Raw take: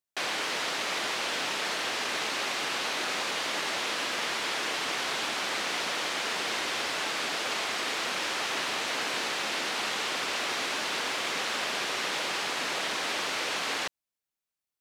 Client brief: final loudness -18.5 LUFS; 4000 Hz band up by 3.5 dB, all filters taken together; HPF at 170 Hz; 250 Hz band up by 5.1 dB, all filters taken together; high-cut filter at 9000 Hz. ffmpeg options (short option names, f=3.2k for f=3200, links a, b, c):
-af "highpass=170,lowpass=9k,equalizer=f=250:t=o:g=7.5,equalizer=f=4k:t=o:g=4.5,volume=8.5dB"